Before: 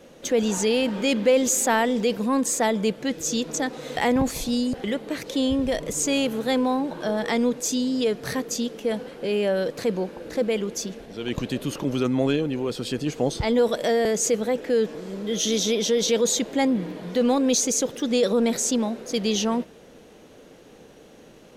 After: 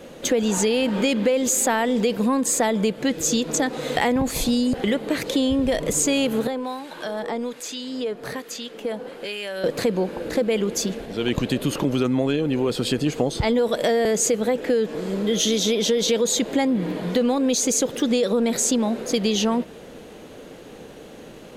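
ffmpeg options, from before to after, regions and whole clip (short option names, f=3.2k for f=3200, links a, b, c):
-filter_complex "[0:a]asettb=1/sr,asplit=3[a][b][c];[a]atrim=end=6.474[d];[b]atrim=start=6.47:end=9.64,asetpts=PTS-STARTPTS,afade=t=in:d=0.004:c=qsin,afade=t=out:st=3.166:d=0.004:c=qsin,equalizer=f=64:w=0.34:g=-11.5,acrossover=split=990|3600[e][f][g];[e]acompressor=threshold=-33dB:ratio=4[h];[f]acompressor=threshold=-39dB:ratio=4[i];[g]acompressor=threshold=-45dB:ratio=4[j];[h][i][j]amix=inputs=3:normalize=0,acrossover=split=1200[k][l];[k]aeval=exprs='val(0)*(1-0.7/2+0.7/2*cos(2*PI*1.2*n/s))':c=same[m];[l]aeval=exprs='val(0)*(1-0.7/2-0.7/2*cos(2*PI*1.2*n/s))':c=same[n];[m][n]amix=inputs=2:normalize=0[o];[c]atrim=start=9.636[p];[d][o]acrossfade=d=0.004:c1=hsin:c2=qsin[q];[q][p]acrossfade=d=0.004:c1=qsin:c2=hsin,equalizer=f=5.7k:t=o:w=0.25:g=-5.5,acompressor=threshold=-25dB:ratio=6,volume=7.5dB"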